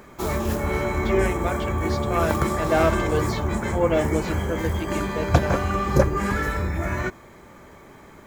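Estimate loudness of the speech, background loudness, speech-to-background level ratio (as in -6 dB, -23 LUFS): -27.5 LUFS, -25.0 LUFS, -2.5 dB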